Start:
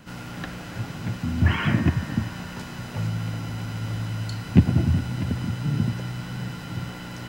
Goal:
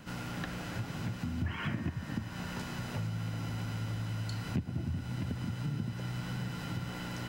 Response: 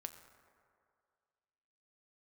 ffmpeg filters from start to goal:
-af "acompressor=threshold=-31dB:ratio=4,volume=-2.5dB"

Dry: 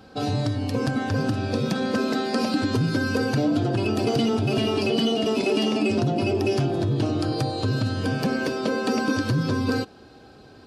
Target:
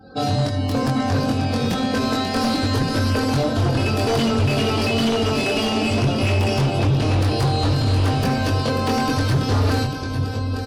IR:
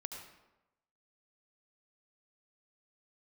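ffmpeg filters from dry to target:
-filter_complex "[0:a]aemphasis=mode=production:type=75fm,bandreject=frequency=380:width=12,asplit=2[link_01][link_02];[link_02]aecho=0:1:847|1694|2541|3388|4235|5082:0.316|0.171|0.0922|0.0498|0.0269|0.0145[link_03];[link_01][link_03]amix=inputs=2:normalize=0,asubboost=boost=12:cutoff=53,asplit=2[link_04][link_05];[link_05]adelay=22,volume=-3dB[link_06];[link_04][link_06]amix=inputs=2:normalize=0,aecho=1:1:539:0.316,aeval=exprs='0.141*(abs(mod(val(0)/0.141+3,4)-2)-1)':channel_layout=same,asplit=2[link_07][link_08];[1:a]atrim=start_sample=2205,afade=type=out:start_time=0.15:duration=0.01,atrim=end_sample=7056[link_09];[link_08][link_09]afir=irnorm=-1:irlink=0,volume=1dB[link_10];[link_07][link_10]amix=inputs=2:normalize=0,afftdn=noise_reduction=25:noise_floor=-43,lowpass=frequency=2100:poles=1"

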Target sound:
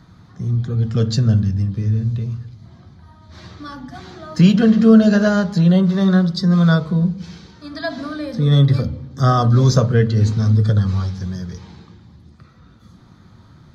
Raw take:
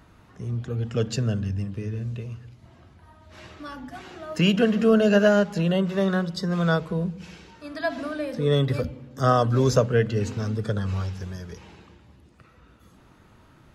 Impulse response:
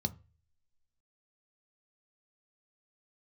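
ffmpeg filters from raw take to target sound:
-filter_complex "[0:a]asplit=2[link_01][link_02];[1:a]atrim=start_sample=2205,lowshelf=frequency=500:gain=-9.5[link_03];[link_02][link_03]afir=irnorm=-1:irlink=0,volume=4dB[link_04];[link_01][link_04]amix=inputs=2:normalize=0"

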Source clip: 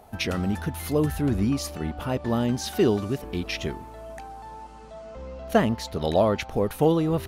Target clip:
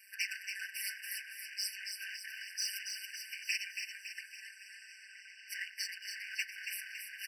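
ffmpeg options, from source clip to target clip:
ffmpeg -i in.wav -af "tremolo=f=210:d=0.71,afftfilt=real='hypot(re,im)*cos(2*PI*random(0))':imag='hypot(re,im)*sin(2*PI*random(1))':win_size=512:overlap=0.75,alimiter=level_in=2dB:limit=-24dB:level=0:latency=1:release=88,volume=-2dB,aeval=exprs='val(0)*sin(2*PI*99*n/s)':channel_layout=same,highpass=frequency=82:width=0.5412,highpass=frequency=82:width=1.3066,lowshelf=frequency=170:gain=-10,aecho=1:1:5.1:0.9,asoftclip=type=hard:threshold=-38.5dB,acompressor=threshold=-48dB:ratio=6,equalizer=frequency=4400:width_type=o:width=2.4:gain=4,aecho=1:1:279|558|837|1116|1395|1674|1953:0.501|0.266|0.141|0.0746|0.0395|0.021|0.0111,afftfilt=real='re*eq(mod(floor(b*sr/1024/1500),2),1)':imag='im*eq(mod(floor(b*sr/1024/1500),2),1)':win_size=1024:overlap=0.75,volume=14.5dB" out.wav

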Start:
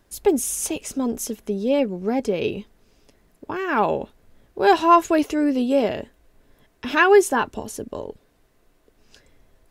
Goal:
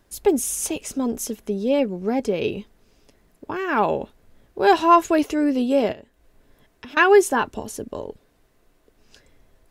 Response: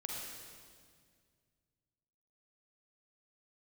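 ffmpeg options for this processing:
-filter_complex "[0:a]asettb=1/sr,asplit=3[link_01][link_02][link_03];[link_01]atrim=end=5.924[link_04];[link_02]atrim=start=5.92:end=6.97,asetpts=PTS-STARTPTS,afade=type=in:duration=0.004:curve=qsin,afade=type=out:start_time=1.046:duration=0.004:curve=qsin,acompressor=threshold=-38dB:ratio=10[link_05];[link_03]atrim=start=6.966[link_06];[link_04][link_05]acrossfade=duration=0.004:curve1=hsin:curve2=qsin[link_07];[link_07][link_06]acrossfade=duration=0.004:curve1=qsin:curve2=hsin"

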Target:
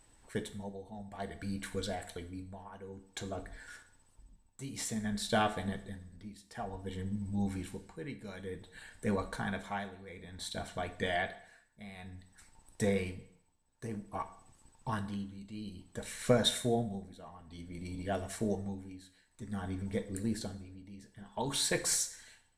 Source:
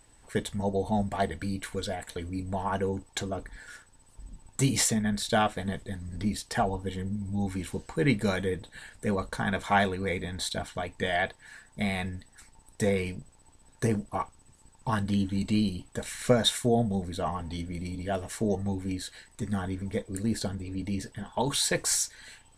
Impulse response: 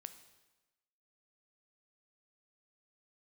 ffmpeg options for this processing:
-filter_complex "[0:a]tremolo=f=0.55:d=0.84[link_01];[1:a]atrim=start_sample=2205,asetrate=79380,aresample=44100[link_02];[link_01][link_02]afir=irnorm=-1:irlink=0,volume=6.5dB"

